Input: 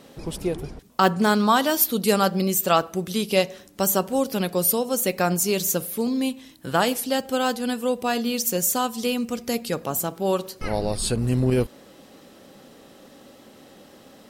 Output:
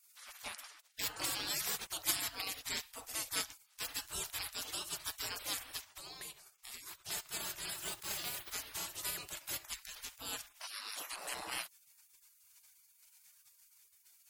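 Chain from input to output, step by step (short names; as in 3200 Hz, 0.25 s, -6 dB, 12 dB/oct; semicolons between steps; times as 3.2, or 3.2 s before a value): 5.85–7.09 compressor 16:1, threshold -27 dBFS, peak gain reduction 13 dB; 7.74–8.53 companded quantiser 6-bit; spectral gate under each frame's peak -30 dB weak; gain +1.5 dB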